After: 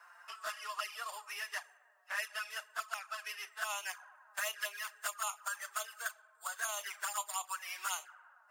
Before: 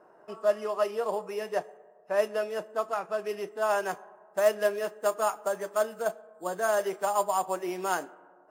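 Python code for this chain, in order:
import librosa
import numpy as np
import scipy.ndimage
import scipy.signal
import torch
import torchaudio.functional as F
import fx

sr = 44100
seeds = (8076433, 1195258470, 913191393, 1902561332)

y = scipy.signal.sosfilt(scipy.signal.butter(4, 1300.0, 'highpass', fs=sr, output='sos'), x)
y = fx.env_flanger(y, sr, rest_ms=6.1, full_db=-33.0)
y = fx.band_squash(y, sr, depth_pct=40)
y = y * 10.0 ** (4.0 / 20.0)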